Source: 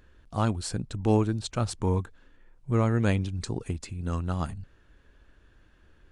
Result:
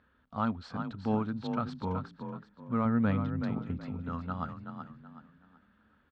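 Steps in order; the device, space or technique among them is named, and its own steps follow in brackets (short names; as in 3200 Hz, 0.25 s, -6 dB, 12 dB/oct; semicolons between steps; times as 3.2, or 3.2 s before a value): 2.85–4.02 tilt -1.5 dB/oct; frequency-shifting delay pedal into a guitar cabinet (frequency-shifting echo 0.376 s, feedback 31%, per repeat +31 Hz, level -8 dB; speaker cabinet 95–3900 Hz, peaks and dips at 120 Hz -5 dB, 240 Hz +9 dB, 350 Hz -10 dB, 920 Hz +3 dB, 1300 Hz +9 dB, 2700 Hz -4 dB); gain -7 dB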